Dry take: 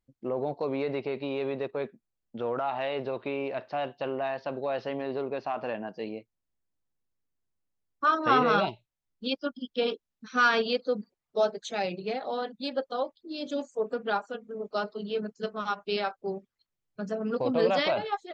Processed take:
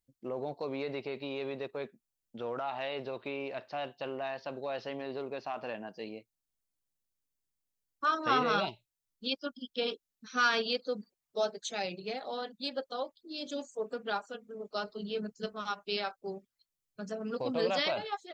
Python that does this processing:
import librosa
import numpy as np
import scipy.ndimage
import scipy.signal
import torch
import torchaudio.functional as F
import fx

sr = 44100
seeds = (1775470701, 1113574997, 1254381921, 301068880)

y = fx.low_shelf(x, sr, hz=150.0, db=11.0, at=(14.87, 15.53))
y = fx.high_shelf(y, sr, hz=3500.0, db=12.0)
y = F.gain(torch.from_numpy(y), -6.5).numpy()